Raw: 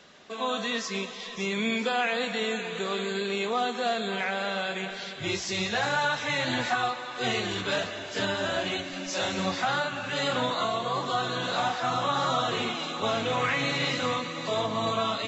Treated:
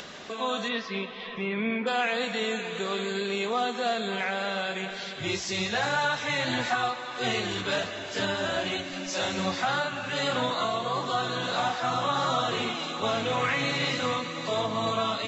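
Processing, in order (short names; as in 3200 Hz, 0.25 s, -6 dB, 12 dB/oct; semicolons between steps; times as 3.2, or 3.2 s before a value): 0.68–1.86 LPF 4500 Hz -> 2300 Hz 24 dB/oct; upward compressor, threshold -32 dBFS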